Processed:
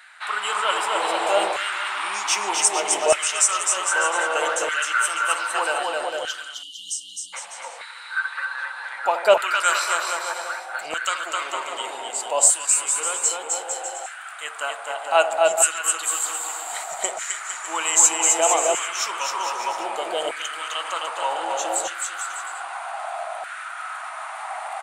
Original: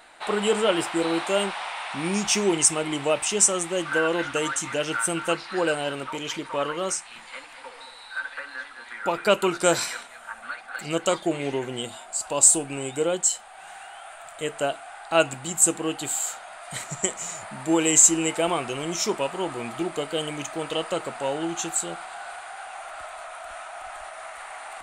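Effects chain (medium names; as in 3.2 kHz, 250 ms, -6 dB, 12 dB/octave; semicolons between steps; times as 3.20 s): feedback echo behind a band-pass 77 ms, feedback 70%, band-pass 630 Hz, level -11.5 dB; spectral selection erased 5.83–7.33 s, 280–2800 Hz; on a send: bouncing-ball echo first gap 260 ms, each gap 0.75×, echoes 5; on the sum: LFO high-pass saw down 0.64 Hz 630–1600 Hz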